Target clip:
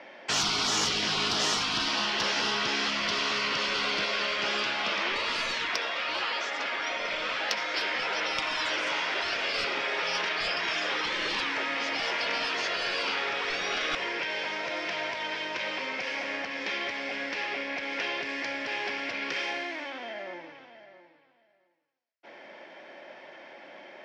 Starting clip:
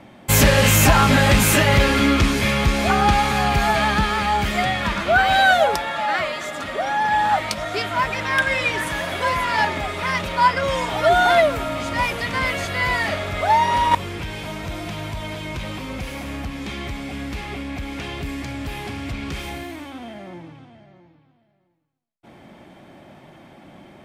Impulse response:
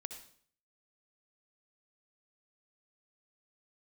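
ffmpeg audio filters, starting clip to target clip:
-filter_complex "[0:a]highpass=450,equalizer=frequency=540:width_type=q:width=4:gain=4,equalizer=frequency=760:width_type=q:width=4:gain=-6,equalizer=frequency=1200:width_type=q:width=4:gain=-9,equalizer=frequency=1800:width_type=q:width=4:gain=3,equalizer=frequency=3700:width_type=q:width=4:gain=-4,equalizer=frequency=5400:width_type=q:width=4:gain=7,lowpass=frequency=5500:width=0.5412,lowpass=frequency=5500:width=1.3066,asplit=2[link_01][link_02];[link_02]highpass=frequency=720:poles=1,volume=9dB,asoftclip=type=tanh:threshold=-5.5dB[link_03];[link_01][link_03]amix=inputs=2:normalize=0,lowpass=frequency=2200:poles=1,volume=-6dB,asplit=2[link_04][link_05];[1:a]atrim=start_sample=2205,lowshelf=frequency=500:gain=-11.5[link_06];[link_05][link_06]afir=irnorm=-1:irlink=0,volume=-1dB[link_07];[link_04][link_07]amix=inputs=2:normalize=0,afftfilt=real='re*lt(hypot(re,im),0.2)':imag='im*lt(hypot(re,im),0.2)':win_size=1024:overlap=0.75,volume=-2dB"

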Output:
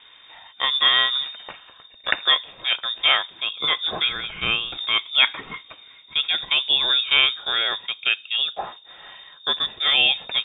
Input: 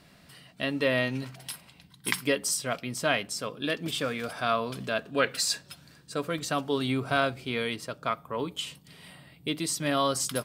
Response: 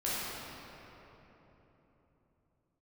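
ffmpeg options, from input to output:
-filter_complex "[0:a]lowpass=frequency=3200:width_type=q:width=0.5098,lowpass=frequency=3200:width_type=q:width=0.6013,lowpass=frequency=3200:width_type=q:width=0.9,lowpass=frequency=3200:width_type=q:width=2.563,afreqshift=-3800,asettb=1/sr,asplit=3[link_01][link_02][link_03];[link_01]atrim=end=4.094[link_04];[link_02]atrim=start=4.09:end=4.78,asetpts=PTS-STARTPTS,afade=type=in:duration=0.004:curve=qsin,afade=type=out:start_time=0.686:duration=0.004:curve=qsin,aemphasis=mode=reproduction:type=riaa[link_05];[link_03]atrim=start=4.776[link_06];[link_04][link_05]acrossfade=duration=0.004:curve1=hsin:curve2=qsin[link_07];[link_07][link_06]acrossfade=duration=0.004:curve1=qsin:curve2=hsin,volume=8.5dB" -ar 48000 -c:a libmp3lame -b:a 80k

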